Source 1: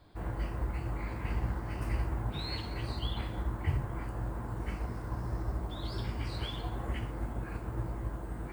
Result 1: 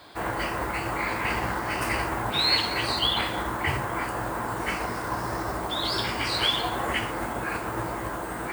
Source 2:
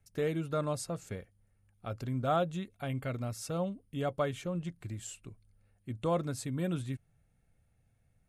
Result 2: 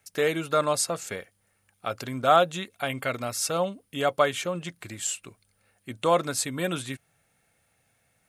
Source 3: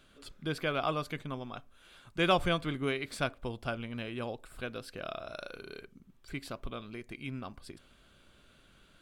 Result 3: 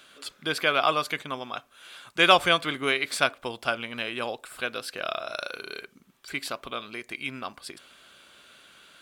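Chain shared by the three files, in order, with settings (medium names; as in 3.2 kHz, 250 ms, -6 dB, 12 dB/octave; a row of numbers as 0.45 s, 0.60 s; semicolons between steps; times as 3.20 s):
high-pass 980 Hz 6 dB/octave; normalise loudness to -27 LUFS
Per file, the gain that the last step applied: +19.0 dB, +15.0 dB, +12.5 dB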